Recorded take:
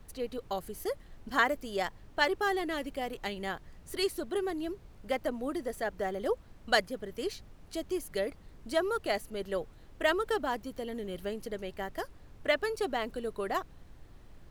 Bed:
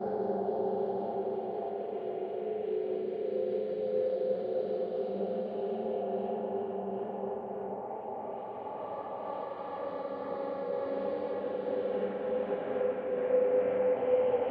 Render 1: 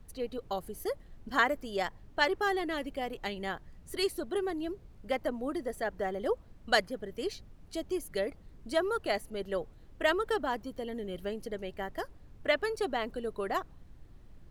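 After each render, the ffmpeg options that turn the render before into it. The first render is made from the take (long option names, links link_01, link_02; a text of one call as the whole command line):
ffmpeg -i in.wav -af "afftdn=noise_reduction=6:noise_floor=-54" out.wav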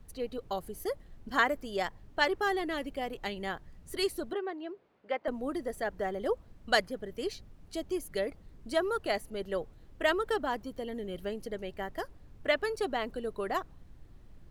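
ffmpeg -i in.wav -filter_complex "[0:a]asettb=1/sr,asplit=3[link_01][link_02][link_03];[link_01]atrim=end=4.334[link_04];[link_02]atrim=start=4.33:end=5.28,asetpts=PTS-STARTPTS,afade=type=in:duration=0.004:curve=qsin,afade=type=out:start_time=0.946:duration=0.004:curve=qsin,highpass=410,lowpass=2800[link_05];[link_03]atrim=start=5.276[link_06];[link_04][link_05]acrossfade=duration=0.004:curve1=hsin:curve2=qsin[link_07];[link_07][link_06]acrossfade=duration=0.004:curve1=qsin:curve2=hsin" out.wav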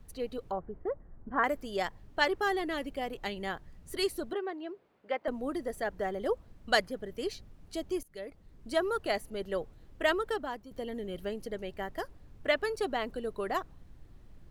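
ffmpeg -i in.wav -filter_complex "[0:a]asettb=1/sr,asplit=3[link_01][link_02][link_03];[link_01]atrim=end=0.514[link_04];[link_02]atrim=start=0.51:end=1.44,asetpts=PTS-STARTPTS,afade=type=in:duration=0.004:curve=qsin,afade=type=out:start_time=0.926:duration=0.004:curve=qsin,lowpass=frequency=1500:width=0.5412,lowpass=frequency=1500:width=1.3066[link_05];[link_03]atrim=start=1.436[link_06];[link_04][link_05]acrossfade=duration=0.004:curve1=hsin:curve2=qsin[link_07];[link_07][link_06]acrossfade=duration=0.004:curve1=qsin:curve2=hsin,asplit=3[link_08][link_09][link_10];[link_08]atrim=end=8.03,asetpts=PTS-STARTPTS,afade=type=out:start_time=8.026:duration=0.004:curve=hsin:silence=0.105925[link_11];[link_09]atrim=start=8.03:end=10.71,asetpts=PTS-STARTPTS,afade=type=in:duration=0.74:silence=0.105925,afade=type=out:start_time=2.09:duration=0.59:silence=0.316228[link_12];[link_10]atrim=start=10.71,asetpts=PTS-STARTPTS,afade=type=in:duration=0.004:curve=hsin:silence=0.316228[link_13];[link_11][link_12][link_13]concat=n=3:v=0:a=1" out.wav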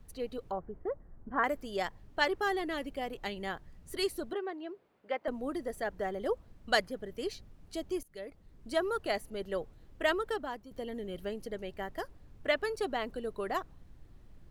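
ffmpeg -i in.wav -af "volume=-1.5dB" out.wav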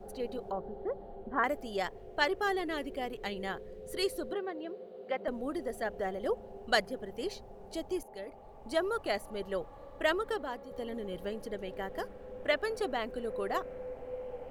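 ffmpeg -i in.wav -i bed.wav -filter_complex "[1:a]volume=-14dB[link_01];[0:a][link_01]amix=inputs=2:normalize=0" out.wav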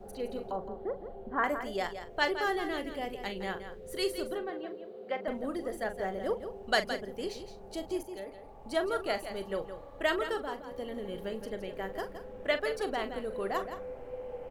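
ffmpeg -i in.wav -filter_complex "[0:a]asplit=2[link_01][link_02];[link_02]adelay=41,volume=-11dB[link_03];[link_01][link_03]amix=inputs=2:normalize=0,aecho=1:1:167:0.316" out.wav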